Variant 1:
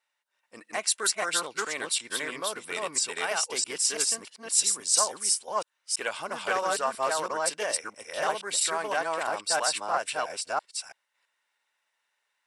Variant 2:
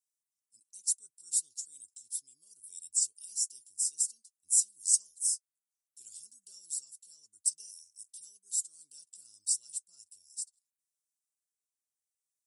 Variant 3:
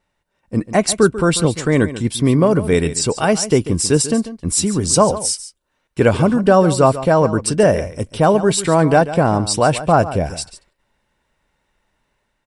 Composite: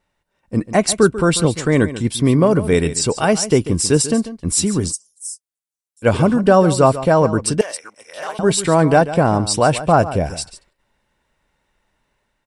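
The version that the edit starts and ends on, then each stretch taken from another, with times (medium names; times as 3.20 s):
3
4.90–6.05 s: from 2, crossfade 0.06 s
7.61–8.39 s: from 1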